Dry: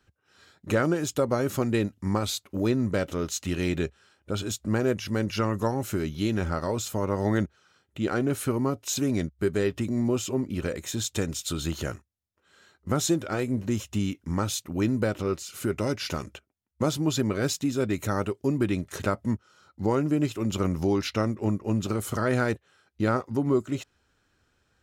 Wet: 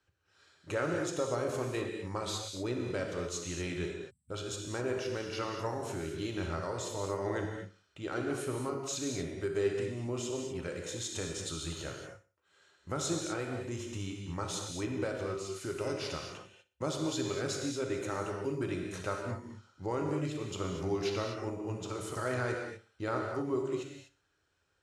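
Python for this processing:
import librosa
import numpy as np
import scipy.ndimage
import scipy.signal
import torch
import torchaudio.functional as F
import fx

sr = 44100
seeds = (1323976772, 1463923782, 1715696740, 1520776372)

p1 = fx.low_shelf(x, sr, hz=83.0, db=-8.5)
p2 = p1 + fx.echo_feedback(p1, sr, ms=60, feedback_pct=41, wet_db=-17.0, dry=0)
p3 = fx.rev_gated(p2, sr, seeds[0], gate_ms=270, shape='flat', drr_db=1.0)
p4 = fx.spec_erase(p3, sr, start_s=4.1, length_s=0.2, low_hz=250.0, high_hz=7500.0)
p5 = scipy.signal.sosfilt(scipy.signal.butter(4, 10000.0, 'lowpass', fs=sr, output='sos'), p4)
p6 = fx.peak_eq(p5, sr, hz=220.0, db=-14.0, octaves=0.35)
y = p6 * 10.0 ** (-8.5 / 20.0)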